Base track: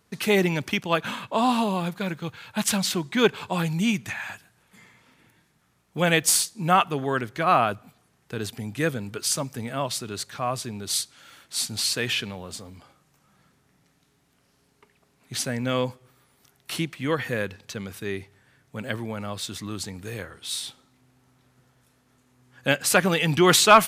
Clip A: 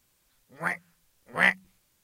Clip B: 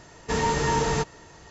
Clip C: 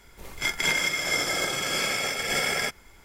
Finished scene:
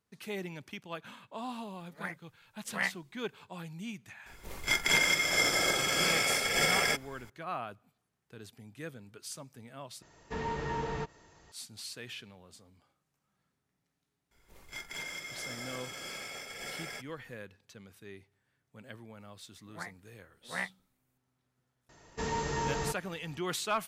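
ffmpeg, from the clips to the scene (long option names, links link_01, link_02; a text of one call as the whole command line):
ffmpeg -i bed.wav -i cue0.wav -i cue1.wav -i cue2.wav -filter_complex "[1:a]asplit=2[link_01][link_02];[3:a]asplit=2[link_03][link_04];[2:a]asplit=2[link_05][link_06];[0:a]volume=-18dB[link_07];[link_05]acrossover=split=3800[link_08][link_09];[link_09]acompressor=threshold=-52dB:ratio=4:attack=1:release=60[link_10];[link_08][link_10]amix=inputs=2:normalize=0[link_11];[link_04]asoftclip=type=tanh:threshold=-18.5dB[link_12];[link_02]equalizer=frequency=4300:width_type=o:width=1.3:gain=-13[link_13];[link_07]asplit=2[link_14][link_15];[link_14]atrim=end=10.024[link_16];[link_11]atrim=end=1.5,asetpts=PTS-STARTPTS,volume=-11dB[link_17];[link_15]atrim=start=11.516[link_18];[link_01]atrim=end=2.03,asetpts=PTS-STARTPTS,volume=-10.5dB,afade=type=in:duration=0.004:curve=hsin,afade=type=out:start_time=2.026:duration=0.004:curve=hsin,adelay=1380[link_19];[link_03]atrim=end=3.04,asetpts=PTS-STARTPTS,volume=-1.5dB,afade=type=in:duration=0.004:curve=hsin,afade=type=out:start_time=3.036:duration=0.004:curve=hsin,adelay=4260[link_20];[link_12]atrim=end=3.04,asetpts=PTS-STARTPTS,volume=-14.5dB,afade=type=in:duration=0.004:curve=hsin,afade=type=out:start_time=3.036:duration=0.004:curve=hsin,adelay=14310[link_21];[link_13]atrim=end=2.03,asetpts=PTS-STARTPTS,volume=-11.5dB,afade=type=in:duration=0.004:curve=hsin,afade=type=out:start_time=2.026:duration=0.004:curve=hsin,adelay=19150[link_22];[link_06]atrim=end=1.5,asetpts=PTS-STARTPTS,volume=-9.5dB,afade=type=in:duration=0.004:curve=hsin,afade=type=out:start_time=1.496:duration=0.004:curve=hsin,adelay=21890[link_23];[link_16][link_17]acrossfade=duration=0.004:curve1=hsin:curve2=hsin[link_24];[link_24][link_18]acrossfade=duration=0.004:curve1=hsin:curve2=hsin[link_25];[link_25][link_19][link_20][link_21][link_22][link_23]amix=inputs=6:normalize=0" out.wav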